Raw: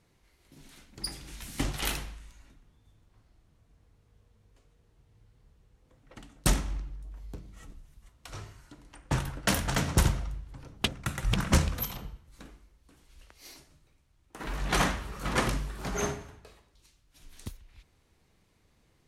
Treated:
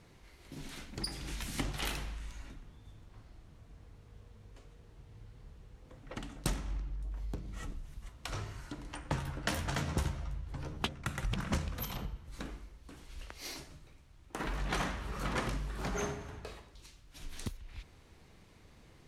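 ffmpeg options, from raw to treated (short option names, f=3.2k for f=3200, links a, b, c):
-filter_complex "[0:a]asettb=1/sr,asplit=3[a][b][c];[a]atrim=end=8.884[d];[b]atrim=start=8.88:end=11.02,asetpts=PTS-STARTPTS,afade=t=in:d=0.004:c=qsin,afade=t=out:st=2.136:d=0.004:c=qsin,asplit=2[e][f];[f]adelay=13,volume=-6.5dB[g];[e][g]amix=inputs=2:normalize=0,atrim=end_sample=94374[h];[c]atrim=start=11.016[i];[d][h]acrossfade=d=0.004:c1=hsin:c2=qsin[j];[j][i]acrossfade=d=0.004:c1=qsin:c2=hsin,highshelf=f=7.8k:g=-7.5,acompressor=threshold=-46dB:ratio=3,volume=8.5dB"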